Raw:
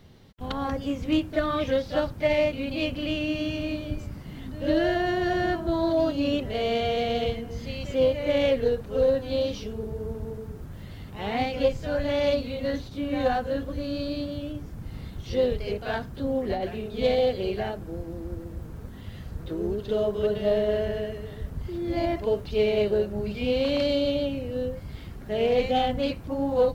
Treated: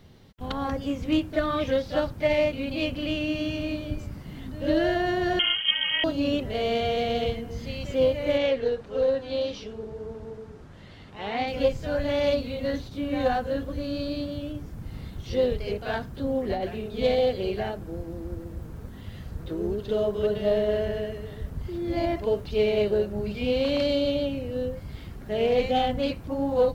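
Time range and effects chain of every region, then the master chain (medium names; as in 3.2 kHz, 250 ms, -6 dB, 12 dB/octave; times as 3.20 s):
5.39–6.04 s: comb filter that takes the minimum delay 0.71 ms + bass shelf 130 Hz +9 dB + frequency inversion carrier 3.2 kHz
8.37–11.48 s: low-pass 6 kHz + bass shelf 210 Hz -10.5 dB
whole clip: none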